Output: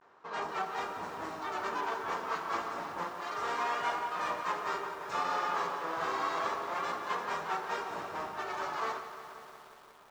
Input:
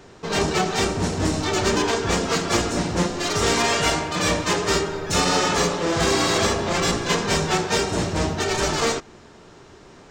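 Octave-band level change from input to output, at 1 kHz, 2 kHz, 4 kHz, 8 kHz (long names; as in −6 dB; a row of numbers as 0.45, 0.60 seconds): −7.5, −12.5, −21.5, −27.0 decibels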